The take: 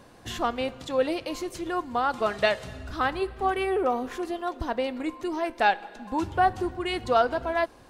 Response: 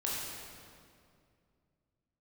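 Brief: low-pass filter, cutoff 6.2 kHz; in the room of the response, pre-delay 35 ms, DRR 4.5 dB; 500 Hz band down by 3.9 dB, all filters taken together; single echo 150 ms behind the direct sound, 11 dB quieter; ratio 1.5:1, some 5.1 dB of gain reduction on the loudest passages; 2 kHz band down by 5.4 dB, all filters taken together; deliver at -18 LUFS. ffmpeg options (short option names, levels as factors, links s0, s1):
-filter_complex "[0:a]lowpass=6200,equalizer=f=500:t=o:g=-5,equalizer=f=2000:t=o:g=-7,acompressor=threshold=0.02:ratio=1.5,aecho=1:1:150:0.282,asplit=2[s0][s1];[1:a]atrim=start_sample=2205,adelay=35[s2];[s1][s2]afir=irnorm=-1:irlink=0,volume=0.335[s3];[s0][s3]amix=inputs=2:normalize=0,volume=5.62"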